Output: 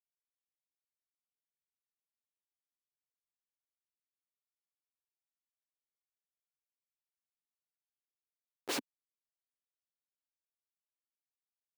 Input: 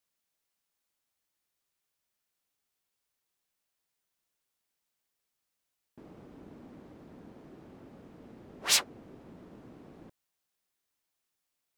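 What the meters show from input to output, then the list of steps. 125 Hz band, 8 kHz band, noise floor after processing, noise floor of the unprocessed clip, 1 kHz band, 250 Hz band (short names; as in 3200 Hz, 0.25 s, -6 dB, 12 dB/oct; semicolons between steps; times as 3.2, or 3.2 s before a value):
-16.5 dB, -15.5 dB, under -85 dBFS, -84 dBFS, -6.5 dB, -4.0 dB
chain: vibrato 7.9 Hz 36 cents; Schmitt trigger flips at -25 dBFS; high-pass sweep 890 Hz -> 100 Hz, 8.49–9.04; gain +8.5 dB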